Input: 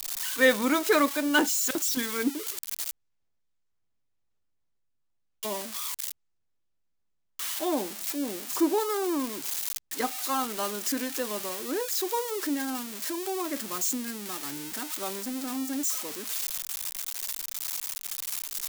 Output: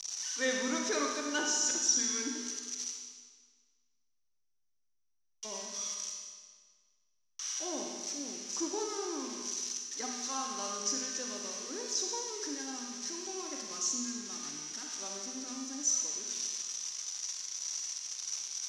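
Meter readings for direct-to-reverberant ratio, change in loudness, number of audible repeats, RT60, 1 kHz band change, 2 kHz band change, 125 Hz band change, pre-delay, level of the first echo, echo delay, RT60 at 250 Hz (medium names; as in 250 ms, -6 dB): 0.5 dB, -5.5 dB, no echo, 1.6 s, -9.5 dB, -9.5 dB, no reading, 39 ms, no echo, no echo, 1.6 s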